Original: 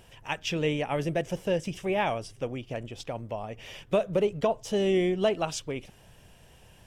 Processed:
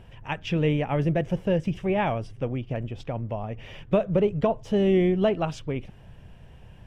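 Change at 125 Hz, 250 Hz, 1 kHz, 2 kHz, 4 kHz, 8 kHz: +8.5 dB, +6.0 dB, +1.5 dB, 0.0 dB, -3.5 dB, under -10 dB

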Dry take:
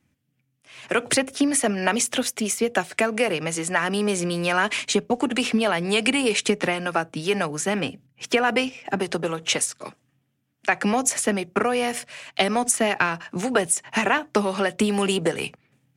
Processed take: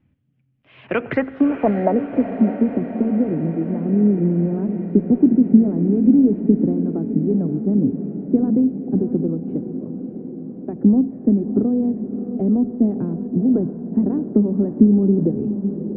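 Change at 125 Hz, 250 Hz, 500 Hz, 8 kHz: +10.5 dB, +11.0 dB, +0.5 dB, under -40 dB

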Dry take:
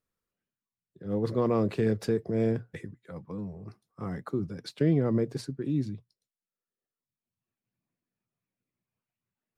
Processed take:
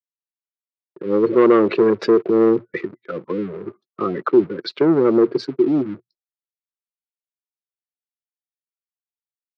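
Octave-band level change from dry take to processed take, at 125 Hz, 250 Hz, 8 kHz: -3.0 dB, +11.5 dB, n/a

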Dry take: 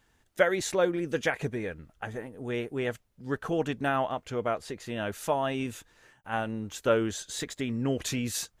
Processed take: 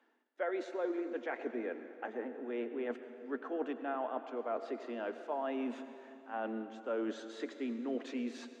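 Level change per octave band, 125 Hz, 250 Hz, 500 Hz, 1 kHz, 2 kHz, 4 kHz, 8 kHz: under -25 dB, -6.0 dB, -8.0 dB, -8.5 dB, -12.0 dB, -16.0 dB, under -25 dB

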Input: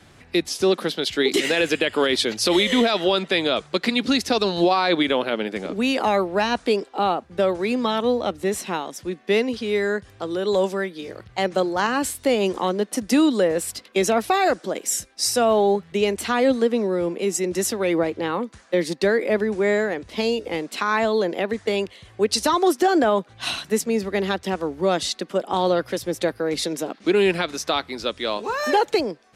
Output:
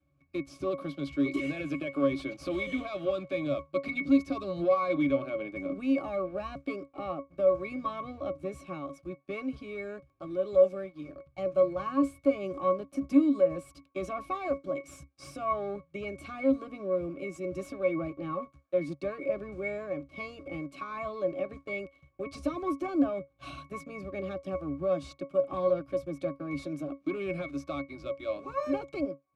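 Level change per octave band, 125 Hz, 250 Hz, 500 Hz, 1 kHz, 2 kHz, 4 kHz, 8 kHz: -8.5 dB, -7.5 dB, -9.5 dB, -13.5 dB, -14.5 dB, under -25 dB, under -25 dB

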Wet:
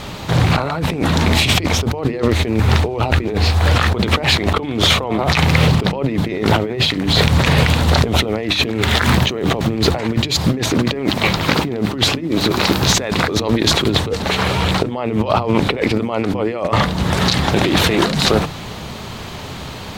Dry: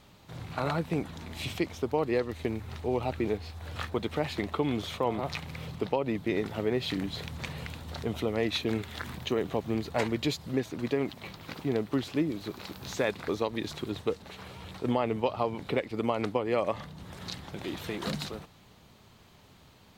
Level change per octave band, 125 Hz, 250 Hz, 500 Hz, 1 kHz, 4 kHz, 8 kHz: +20.5, +14.5, +11.0, +16.0, +22.0, +23.0 dB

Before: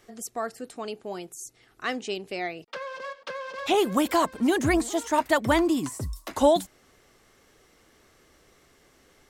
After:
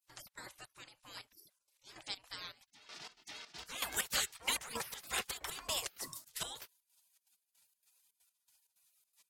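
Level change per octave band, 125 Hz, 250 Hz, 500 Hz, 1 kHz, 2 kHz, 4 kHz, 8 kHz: -22.0, -32.0, -26.5, -19.5, -11.5, -4.5, -3.5 dB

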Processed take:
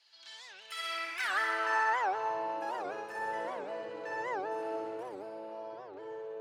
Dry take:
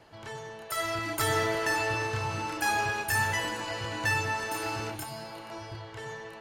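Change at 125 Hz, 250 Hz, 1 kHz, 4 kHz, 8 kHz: under -25 dB, -9.0 dB, -2.0 dB, -8.0 dB, -16.5 dB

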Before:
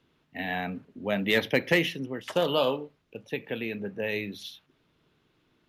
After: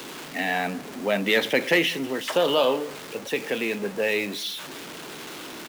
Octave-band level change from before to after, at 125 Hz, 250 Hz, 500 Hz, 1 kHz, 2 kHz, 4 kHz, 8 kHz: -2.0, +3.0, +4.5, +5.5, +5.0, +6.0, +12.0 dB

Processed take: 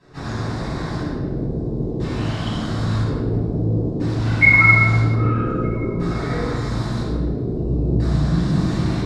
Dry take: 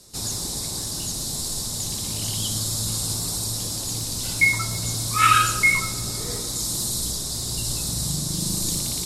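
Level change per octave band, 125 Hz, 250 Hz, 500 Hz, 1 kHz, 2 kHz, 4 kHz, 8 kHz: +11.5 dB, +12.5 dB, +13.0 dB, -2.5 dB, +6.0 dB, -10.5 dB, under -20 dB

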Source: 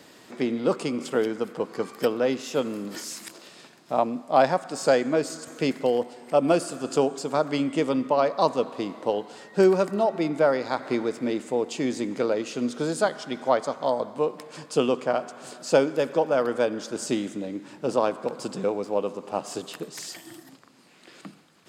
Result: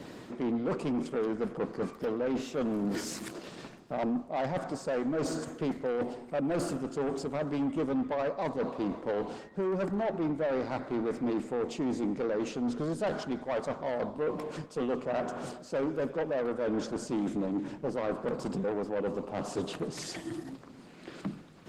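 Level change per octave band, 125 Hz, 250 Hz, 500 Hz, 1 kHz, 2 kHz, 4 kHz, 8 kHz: -2.5, -4.0, -8.5, -10.0, -8.0, -9.5, -9.0 dB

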